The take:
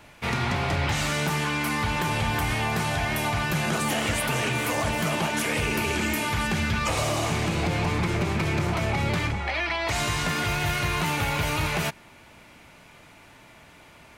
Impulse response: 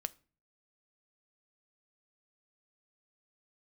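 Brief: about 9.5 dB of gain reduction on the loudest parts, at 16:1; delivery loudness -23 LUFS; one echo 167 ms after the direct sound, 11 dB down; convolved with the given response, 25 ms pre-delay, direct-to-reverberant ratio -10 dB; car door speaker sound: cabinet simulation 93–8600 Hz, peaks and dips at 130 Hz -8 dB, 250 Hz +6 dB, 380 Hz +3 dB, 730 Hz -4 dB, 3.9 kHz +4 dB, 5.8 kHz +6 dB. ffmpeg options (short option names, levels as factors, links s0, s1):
-filter_complex "[0:a]acompressor=threshold=0.0282:ratio=16,aecho=1:1:167:0.282,asplit=2[s0][s1];[1:a]atrim=start_sample=2205,adelay=25[s2];[s1][s2]afir=irnorm=-1:irlink=0,volume=3.55[s3];[s0][s3]amix=inputs=2:normalize=0,highpass=93,equalizer=f=130:t=q:w=4:g=-8,equalizer=f=250:t=q:w=4:g=6,equalizer=f=380:t=q:w=4:g=3,equalizer=f=730:t=q:w=4:g=-4,equalizer=f=3900:t=q:w=4:g=4,equalizer=f=5800:t=q:w=4:g=6,lowpass=f=8600:w=0.5412,lowpass=f=8600:w=1.3066,volume=1.12"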